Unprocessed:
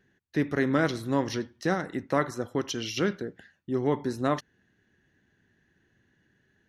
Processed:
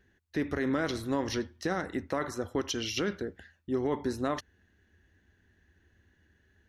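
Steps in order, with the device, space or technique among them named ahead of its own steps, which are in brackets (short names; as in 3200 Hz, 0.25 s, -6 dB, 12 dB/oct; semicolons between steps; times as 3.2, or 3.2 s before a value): car stereo with a boomy subwoofer (resonant low shelf 100 Hz +7.5 dB, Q 3; limiter -20.5 dBFS, peak gain reduction 8 dB)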